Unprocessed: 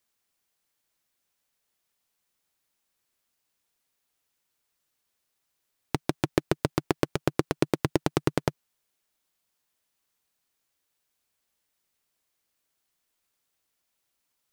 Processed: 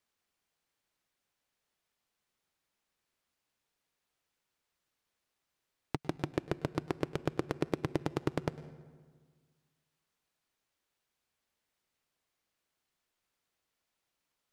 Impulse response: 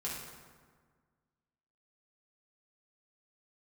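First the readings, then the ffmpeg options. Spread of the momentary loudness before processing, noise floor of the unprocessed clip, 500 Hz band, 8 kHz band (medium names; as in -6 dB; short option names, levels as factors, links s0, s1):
5 LU, -79 dBFS, -7.5 dB, -14.0 dB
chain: -filter_complex "[0:a]alimiter=limit=0.224:level=0:latency=1:release=462,lowpass=f=3800:p=1,asplit=2[s0][s1];[s1]equalizer=f=1100:w=2.2:g=-4.5[s2];[1:a]atrim=start_sample=2205,adelay=101[s3];[s2][s3]afir=irnorm=-1:irlink=0,volume=0.15[s4];[s0][s4]amix=inputs=2:normalize=0,volume=0.891"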